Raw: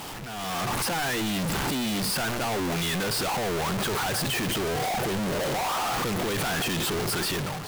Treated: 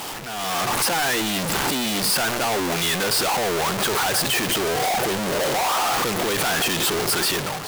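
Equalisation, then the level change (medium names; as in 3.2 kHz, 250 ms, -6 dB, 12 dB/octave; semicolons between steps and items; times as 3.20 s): tone controls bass -8 dB, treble +2 dB; +6.0 dB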